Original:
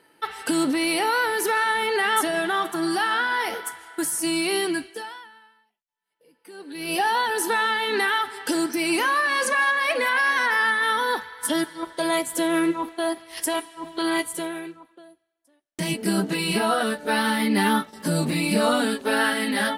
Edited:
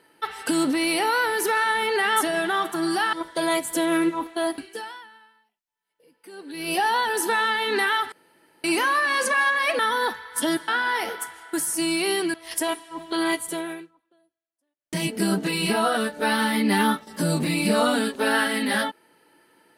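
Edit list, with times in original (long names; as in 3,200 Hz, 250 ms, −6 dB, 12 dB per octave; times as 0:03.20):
0:03.13–0:04.79: swap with 0:11.75–0:13.20
0:08.33–0:08.85: fill with room tone
0:10.00–0:10.86: remove
0:14.59–0:15.80: duck −15.5 dB, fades 0.18 s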